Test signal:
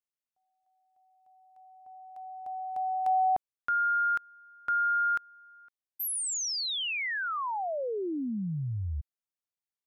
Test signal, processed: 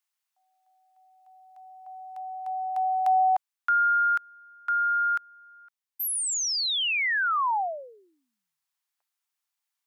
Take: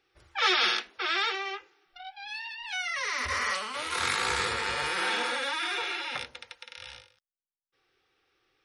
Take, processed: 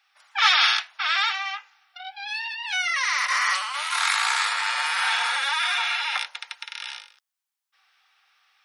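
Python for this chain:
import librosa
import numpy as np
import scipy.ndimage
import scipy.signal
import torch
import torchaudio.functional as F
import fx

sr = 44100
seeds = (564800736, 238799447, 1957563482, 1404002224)

y = scipy.signal.sosfilt(scipy.signal.butter(6, 760.0, 'highpass', fs=sr, output='sos'), x)
y = fx.rider(y, sr, range_db=4, speed_s=2.0)
y = y * librosa.db_to_amplitude(6.0)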